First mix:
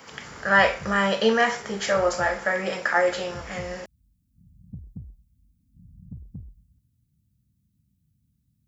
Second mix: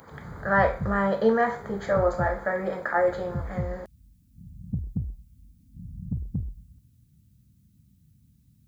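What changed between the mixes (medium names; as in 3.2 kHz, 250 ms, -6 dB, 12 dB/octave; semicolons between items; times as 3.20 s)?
speech: add boxcar filter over 16 samples; background +9.5 dB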